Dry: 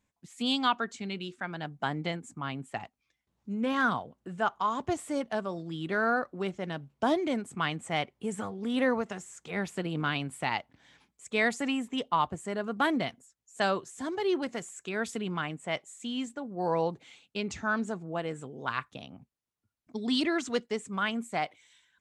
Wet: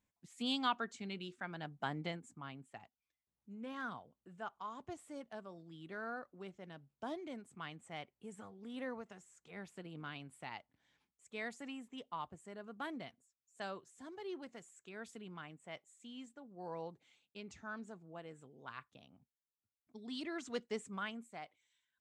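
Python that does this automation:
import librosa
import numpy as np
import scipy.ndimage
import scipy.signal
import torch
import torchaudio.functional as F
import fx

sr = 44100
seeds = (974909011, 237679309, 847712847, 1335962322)

y = fx.gain(x, sr, db=fx.line((2.05, -8.0), (2.77, -16.5), (20.14, -16.5), (20.8, -7.0), (21.35, -18.0)))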